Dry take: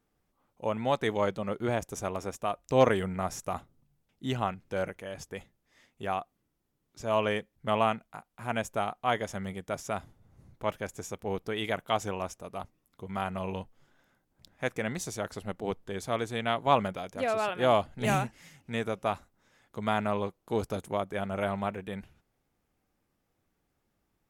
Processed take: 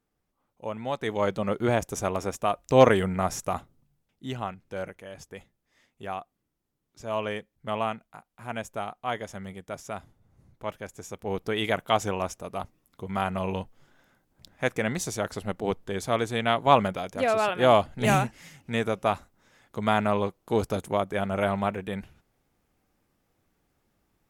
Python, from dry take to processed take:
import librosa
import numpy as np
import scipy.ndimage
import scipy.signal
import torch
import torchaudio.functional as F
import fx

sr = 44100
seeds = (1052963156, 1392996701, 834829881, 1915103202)

y = fx.gain(x, sr, db=fx.line((0.95, -3.0), (1.4, 5.5), (3.42, 5.5), (4.25, -2.5), (10.97, -2.5), (11.5, 5.0)))